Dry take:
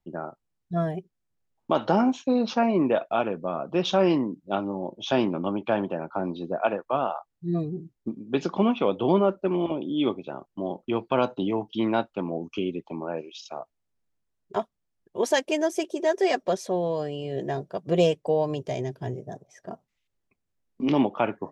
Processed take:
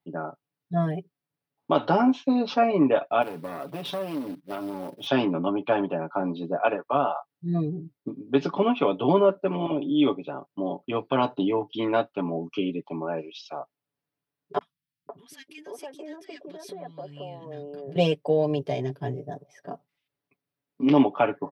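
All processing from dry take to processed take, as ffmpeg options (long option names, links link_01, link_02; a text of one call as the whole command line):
ffmpeg -i in.wav -filter_complex "[0:a]asettb=1/sr,asplit=3[link_01][link_02][link_03];[link_01]atrim=end=3.224[link_04];[link_02]atrim=start=3.22:end=5.07,asetpts=PTS-STARTPTS,afade=type=in:duration=0.004:curve=qsin,afade=type=out:start_time=1.846:duration=0.004:curve=qsin,acompressor=threshold=-29dB:ratio=4:attack=3.2:release=140:knee=1:detection=peak,acrusher=bits=4:mode=log:mix=0:aa=0.000001,aeval=exprs='clip(val(0),-1,0.0188)':channel_layout=same[link_05];[link_03]atrim=start=5.066[link_06];[link_04][link_05]acrossfade=duration=0.004:curve1=hsin:curve2=qsin[link_07];[link_07][link_06]acrossfade=duration=0.004:curve1=qsin:curve2=hsin,asettb=1/sr,asplit=3[link_08][link_09][link_10];[link_08]atrim=end=14.584[link_11];[link_09]atrim=start=14.58:end=17.96,asetpts=PTS-STARTPTS,afade=type=in:duration=0.004:curve=qsin,afade=type=out:start_time=3.376:duration=0.004:curve=qsin,acompressor=threshold=-36dB:ratio=8:attack=3.2:release=140:knee=1:detection=peak,acrossover=split=240|1500[link_12][link_13][link_14];[link_14]adelay=30[link_15];[link_13]adelay=510[link_16];[link_12][link_16][link_15]amix=inputs=3:normalize=0,atrim=end_sample=149058[link_17];[link_10]atrim=start=17.956[link_18];[link_11][link_17]acrossfade=duration=0.004:curve1=hsin:curve2=qsin[link_19];[link_19][link_18]acrossfade=duration=0.004:curve1=qsin:curve2=hsin,highpass=130,equalizer=frequency=6900:width_type=o:width=0.42:gain=-15,aecho=1:1:7:0.77" out.wav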